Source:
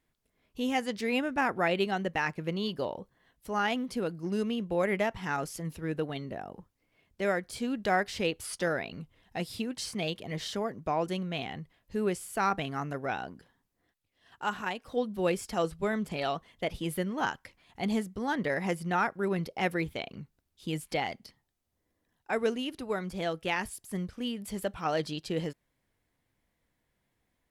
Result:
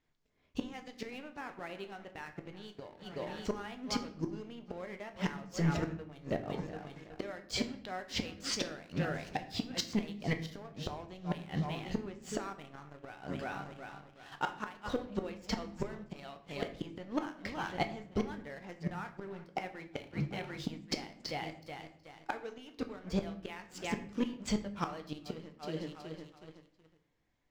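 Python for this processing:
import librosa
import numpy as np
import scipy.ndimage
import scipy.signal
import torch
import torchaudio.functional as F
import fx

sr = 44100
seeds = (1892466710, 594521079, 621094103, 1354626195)

y = scipy.signal.sosfilt(scipy.signal.butter(8, 7200.0, 'lowpass', fs=sr, output='sos'), x)
y = fx.echo_feedback(y, sr, ms=371, feedback_pct=49, wet_db=-17.5)
y = fx.gate_flip(y, sr, shuts_db=-26.0, range_db=-25)
y = fx.leveller(y, sr, passes=2)
y = fx.room_shoebox(y, sr, seeds[0], volume_m3=110.0, walls='mixed', distance_m=0.36)
y = F.gain(torch.from_numpy(y), 1.0).numpy()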